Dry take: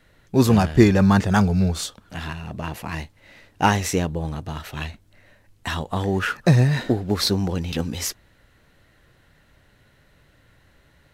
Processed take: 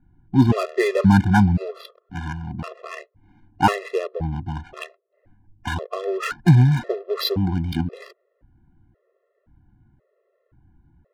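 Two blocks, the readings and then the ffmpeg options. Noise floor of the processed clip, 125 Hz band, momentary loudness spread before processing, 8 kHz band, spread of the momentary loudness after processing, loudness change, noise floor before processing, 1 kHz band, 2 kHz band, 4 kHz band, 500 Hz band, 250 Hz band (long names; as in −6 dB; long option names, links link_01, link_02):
−71 dBFS, +1.0 dB, 16 LU, −11.5 dB, 20 LU, +0.5 dB, −58 dBFS, +0.5 dB, −1.0 dB, −3.5 dB, −0.5 dB, −0.5 dB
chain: -af "aresample=11025,aresample=44100,adynamicsmooth=sensitivity=3.5:basefreq=600,afftfilt=real='re*gt(sin(2*PI*0.95*pts/sr)*(1-2*mod(floor(b*sr/1024/350),2)),0)':imag='im*gt(sin(2*PI*0.95*pts/sr)*(1-2*mod(floor(b*sr/1024/350),2)),0)':win_size=1024:overlap=0.75,volume=3dB"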